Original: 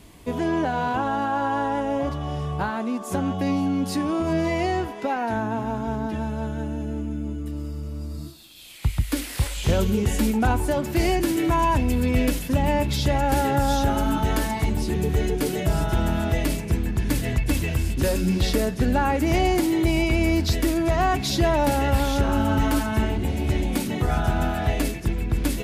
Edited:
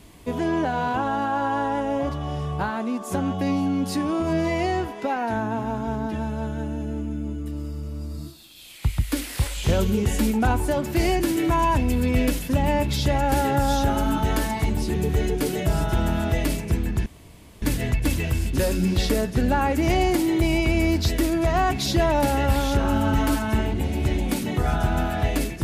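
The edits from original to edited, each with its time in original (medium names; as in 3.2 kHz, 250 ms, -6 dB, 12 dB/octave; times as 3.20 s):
17.06 s: insert room tone 0.56 s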